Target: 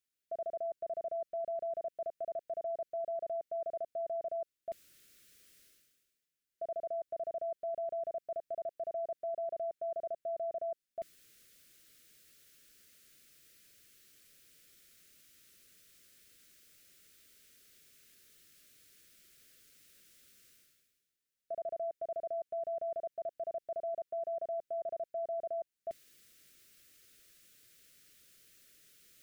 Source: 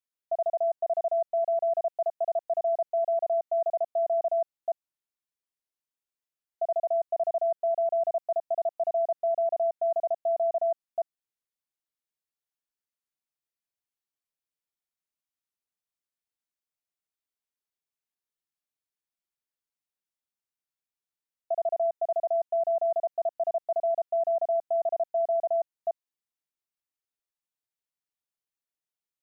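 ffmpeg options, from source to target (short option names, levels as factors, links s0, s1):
-af "areverse,acompressor=mode=upward:threshold=0.00501:ratio=2.5,areverse,alimiter=level_in=1.26:limit=0.0631:level=0:latency=1:release=13,volume=0.794,asuperstop=centerf=880:order=4:qfactor=0.99,volume=1.58"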